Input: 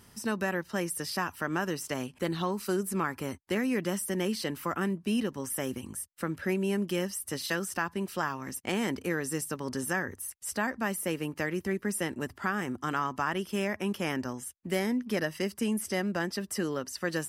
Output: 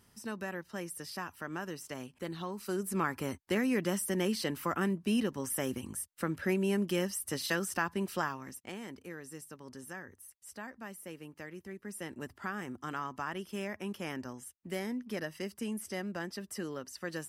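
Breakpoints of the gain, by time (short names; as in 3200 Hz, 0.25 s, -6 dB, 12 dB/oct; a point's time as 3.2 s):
2.51 s -8.5 dB
3.04 s -1 dB
8.17 s -1 dB
8.8 s -14 dB
11.76 s -14 dB
12.19 s -7.5 dB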